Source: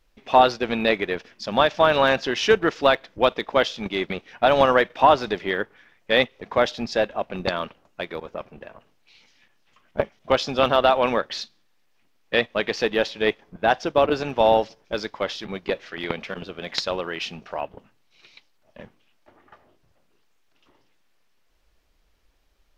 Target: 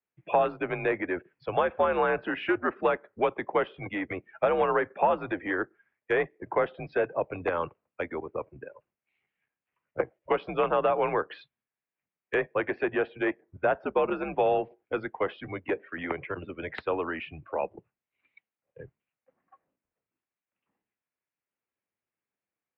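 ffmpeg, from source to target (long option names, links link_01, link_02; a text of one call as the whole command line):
ffmpeg -i in.wav -filter_complex "[0:a]afftdn=noise_reduction=21:noise_floor=-37,highpass=frequency=170:width_type=q:width=0.5412,highpass=frequency=170:width_type=q:width=1.307,lowpass=frequency=2500:width_type=q:width=0.5176,lowpass=frequency=2500:width_type=q:width=0.7071,lowpass=frequency=2500:width_type=q:width=1.932,afreqshift=-86,acrossover=split=270|1600[link_01][link_02][link_03];[link_01]acompressor=threshold=-38dB:ratio=4[link_04];[link_02]acompressor=threshold=-22dB:ratio=4[link_05];[link_03]acompressor=threshold=-44dB:ratio=4[link_06];[link_04][link_05][link_06]amix=inputs=3:normalize=0,acrossover=split=320|1400[link_07][link_08][link_09];[link_07]asoftclip=type=tanh:threshold=-38dB[link_10];[link_09]crystalizer=i=3:c=0[link_11];[link_10][link_08][link_11]amix=inputs=3:normalize=0" out.wav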